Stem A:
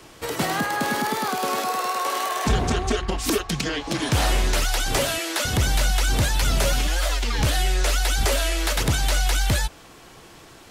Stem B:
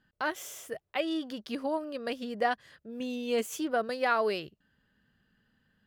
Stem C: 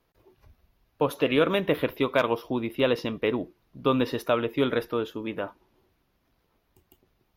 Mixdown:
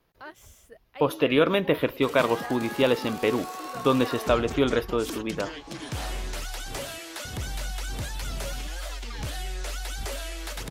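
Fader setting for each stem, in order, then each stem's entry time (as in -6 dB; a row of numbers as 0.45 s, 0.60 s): -12.0 dB, -11.5 dB, +1.5 dB; 1.80 s, 0.00 s, 0.00 s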